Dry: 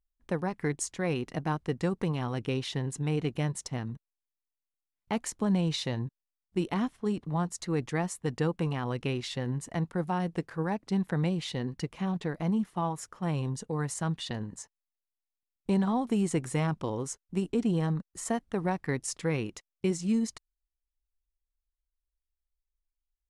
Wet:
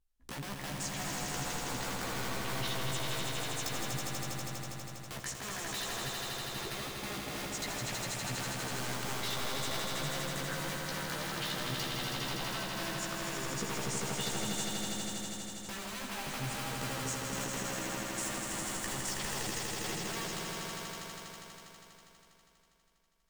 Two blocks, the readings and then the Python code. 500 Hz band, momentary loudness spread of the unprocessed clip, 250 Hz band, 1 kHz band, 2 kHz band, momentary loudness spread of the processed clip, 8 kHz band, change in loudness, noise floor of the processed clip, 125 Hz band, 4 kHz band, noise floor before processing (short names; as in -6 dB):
-7.5 dB, 7 LU, -11.5 dB, -2.0 dB, +3.0 dB, 6 LU, +4.5 dB, -4.5 dB, -63 dBFS, -9.5 dB, +5.5 dB, under -85 dBFS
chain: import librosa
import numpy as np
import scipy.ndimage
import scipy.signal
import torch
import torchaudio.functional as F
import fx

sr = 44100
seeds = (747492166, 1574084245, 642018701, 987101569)

y = fx.env_lowpass_down(x, sr, base_hz=2800.0, full_db=-24.5)
y = (np.mod(10.0 ** (30.0 / 20.0) * y + 1.0, 2.0) - 1.0) / 10.0 ** (30.0 / 20.0)
y = fx.over_compress(y, sr, threshold_db=-41.0, ratio=-1.0)
y = fx.doubler(y, sr, ms=15.0, db=-3.5)
y = fx.echo_swell(y, sr, ms=81, loudest=5, wet_db=-5.0)
y = F.gain(torch.from_numpy(y), -2.5).numpy()